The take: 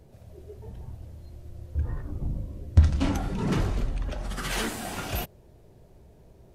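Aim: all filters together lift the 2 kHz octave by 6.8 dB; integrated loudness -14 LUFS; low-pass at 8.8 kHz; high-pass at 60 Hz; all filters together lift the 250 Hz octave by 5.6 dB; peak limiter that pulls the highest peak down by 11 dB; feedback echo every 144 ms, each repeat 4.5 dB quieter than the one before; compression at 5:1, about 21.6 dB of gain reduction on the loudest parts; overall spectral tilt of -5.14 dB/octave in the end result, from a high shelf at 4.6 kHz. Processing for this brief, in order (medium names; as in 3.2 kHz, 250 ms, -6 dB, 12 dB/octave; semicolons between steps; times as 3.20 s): high-pass 60 Hz; low-pass 8.8 kHz; peaking EQ 250 Hz +7 dB; peaking EQ 2 kHz +7 dB; treble shelf 4.6 kHz +8 dB; compression 5:1, threshold -37 dBFS; peak limiter -32 dBFS; feedback delay 144 ms, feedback 60%, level -4.5 dB; trim +27 dB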